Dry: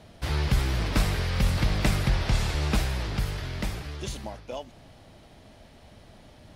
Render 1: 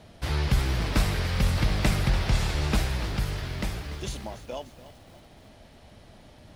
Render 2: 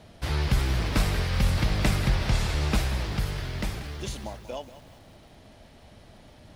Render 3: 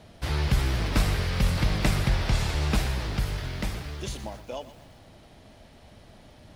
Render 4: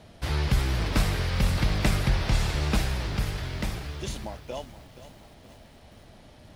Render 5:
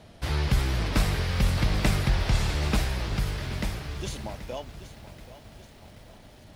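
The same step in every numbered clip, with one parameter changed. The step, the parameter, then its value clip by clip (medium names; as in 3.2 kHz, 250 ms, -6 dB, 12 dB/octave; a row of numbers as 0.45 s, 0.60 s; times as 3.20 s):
bit-crushed delay, time: 290 ms, 186 ms, 121 ms, 474 ms, 780 ms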